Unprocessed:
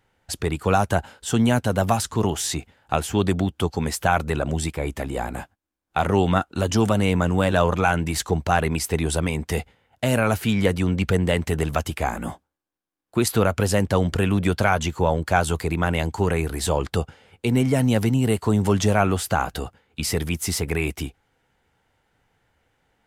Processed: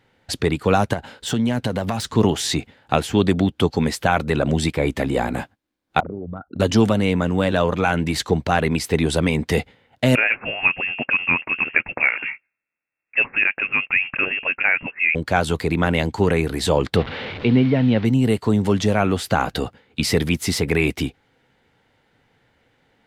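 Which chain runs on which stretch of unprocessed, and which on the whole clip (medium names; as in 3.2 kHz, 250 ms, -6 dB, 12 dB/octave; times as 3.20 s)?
0.93–2.14 s: self-modulated delay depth 0.057 ms + compression 5:1, threshold -25 dBFS
6.00–6.60 s: resonances exaggerated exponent 3 + compression 20:1, threshold -32 dBFS
10.15–15.15 s: high-pass 300 Hz 24 dB/octave + frequency inversion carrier 3 kHz
16.96–18.05 s: one-bit delta coder 64 kbps, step -29 dBFS + low-pass 3.6 kHz 24 dB/octave
whole clip: gain riding within 3 dB 0.5 s; graphic EQ 125/250/500/1000/2000/4000 Hz +7/+9/+7/+3/+7/+9 dB; trim -5 dB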